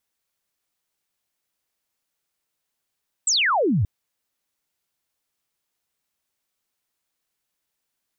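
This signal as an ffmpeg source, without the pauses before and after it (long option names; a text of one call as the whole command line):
ffmpeg -f lavfi -i "aevalsrc='0.141*clip(t/0.002,0,1)*clip((0.58-t)/0.002,0,1)*sin(2*PI*8300*0.58/log(84/8300)*(exp(log(84/8300)*t/0.58)-1))':duration=0.58:sample_rate=44100" out.wav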